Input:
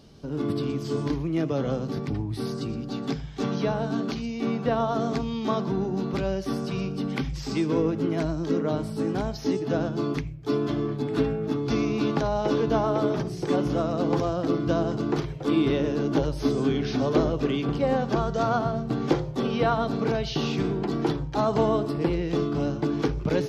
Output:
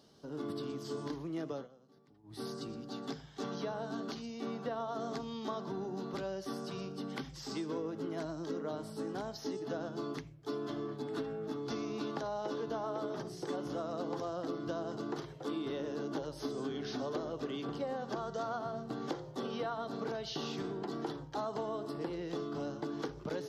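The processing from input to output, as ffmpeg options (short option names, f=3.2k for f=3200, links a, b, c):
-filter_complex "[0:a]asplit=3[a][b][c];[a]atrim=end=1.68,asetpts=PTS-STARTPTS,afade=t=out:st=1.51:d=0.17:silence=0.0707946[d];[b]atrim=start=1.68:end=2.23,asetpts=PTS-STARTPTS,volume=-23dB[e];[c]atrim=start=2.23,asetpts=PTS-STARTPTS,afade=t=in:d=0.17:silence=0.0707946[f];[d][e][f]concat=n=3:v=0:a=1,highpass=f=420:p=1,equalizer=f=2.4k:t=o:w=0.41:g=-9.5,acompressor=threshold=-28dB:ratio=6,volume=-6dB"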